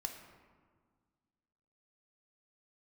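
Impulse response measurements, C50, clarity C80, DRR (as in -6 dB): 6.5 dB, 8.0 dB, 3.5 dB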